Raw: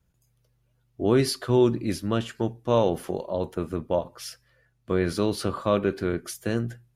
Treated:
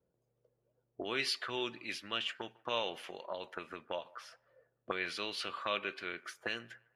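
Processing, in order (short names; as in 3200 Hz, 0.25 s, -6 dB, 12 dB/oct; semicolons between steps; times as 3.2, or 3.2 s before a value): auto-wah 470–2700 Hz, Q 2.4, up, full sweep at -24.5 dBFS; band-limited delay 0.15 s, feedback 36%, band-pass 980 Hz, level -22.5 dB; gain +5 dB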